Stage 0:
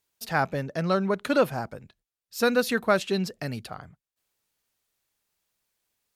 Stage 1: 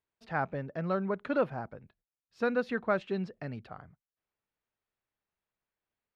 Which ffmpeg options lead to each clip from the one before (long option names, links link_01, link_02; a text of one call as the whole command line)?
ffmpeg -i in.wav -af "lowpass=2100,volume=-6.5dB" out.wav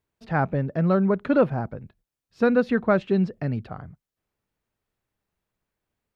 ffmpeg -i in.wav -af "lowshelf=frequency=400:gain=10,volume=5dB" out.wav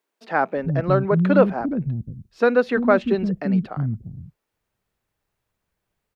ffmpeg -i in.wav -filter_complex "[0:a]acrossover=split=260[link_01][link_02];[link_01]adelay=350[link_03];[link_03][link_02]amix=inputs=2:normalize=0,volume=4.5dB" out.wav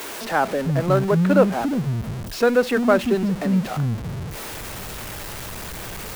ffmpeg -i in.wav -af "aeval=exprs='val(0)+0.5*0.0531*sgn(val(0))':channel_layout=same,volume=-1dB" out.wav